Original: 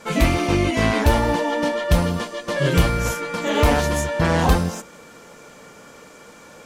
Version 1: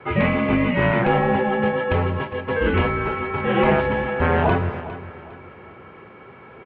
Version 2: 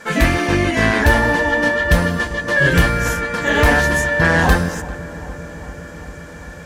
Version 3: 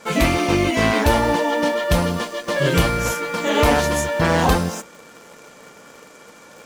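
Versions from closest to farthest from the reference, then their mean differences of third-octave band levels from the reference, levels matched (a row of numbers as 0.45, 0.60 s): 3, 2, 1; 1.5, 3.5, 10.5 dB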